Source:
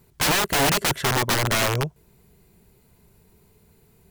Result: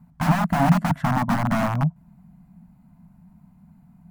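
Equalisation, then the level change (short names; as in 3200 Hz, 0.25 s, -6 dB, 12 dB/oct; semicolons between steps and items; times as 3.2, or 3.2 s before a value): EQ curve 120 Hz 0 dB, 170 Hz +14 dB, 270 Hz +7 dB, 400 Hz -30 dB, 690 Hz +4 dB, 1300 Hz -1 dB, 3600 Hz -17 dB; 0.0 dB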